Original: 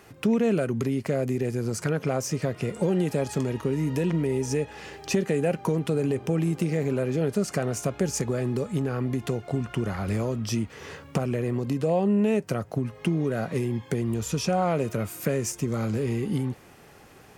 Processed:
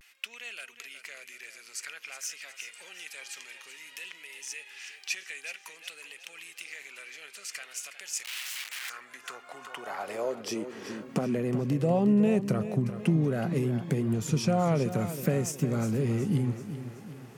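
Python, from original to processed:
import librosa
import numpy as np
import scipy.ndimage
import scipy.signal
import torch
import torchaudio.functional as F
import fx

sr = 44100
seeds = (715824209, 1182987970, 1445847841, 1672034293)

p1 = x + fx.echo_feedback(x, sr, ms=371, feedback_pct=47, wet_db=-11.5, dry=0)
p2 = fx.overflow_wrap(p1, sr, gain_db=29.0, at=(8.25, 8.9))
p3 = fx.filter_sweep_highpass(p2, sr, from_hz=2400.0, to_hz=140.0, start_s=8.69, end_s=11.64, q=1.8)
p4 = fx.vibrato(p3, sr, rate_hz=0.53, depth_cents=52.0)
y = p4 * librosa.db_to_amplitude(-3.5)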